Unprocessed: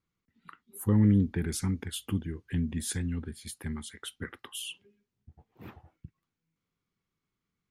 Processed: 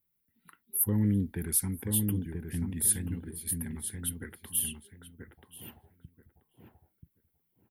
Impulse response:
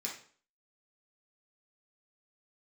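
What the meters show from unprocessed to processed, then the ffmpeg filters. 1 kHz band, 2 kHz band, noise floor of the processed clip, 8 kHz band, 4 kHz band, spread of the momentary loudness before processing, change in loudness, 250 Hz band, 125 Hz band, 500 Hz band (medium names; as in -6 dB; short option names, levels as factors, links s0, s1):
-6.0 dB, -4.5 dB, -78 dBFS, +10.0 dB, -4.5 dB, 21 LU, +1.0 dB, -3.0 dB, -3.0 dB, -3.0 dB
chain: -filter_complex "[0:a]aexciter=amount=16:drive=2.3:freq=9500,bandreject=f=1200:w=5.1,asplit=2[s0][s1];[s1]adelay=983,lowpass=f=1300:p=1,volume=0.631,asplit=2[s2][s3];[s3]adelay=983,lowpass=f=1300:p=1,volume=0.21,asplit=2[s4][s5];[s5]adelay=983,lowpass=f=1300:p=1,volume=0.21[s6];[s2][s4][s6]amix=inputs=3:normalize=0[s7];[s0][s7]amix=inputs=2:normalize=0,volume=0.596"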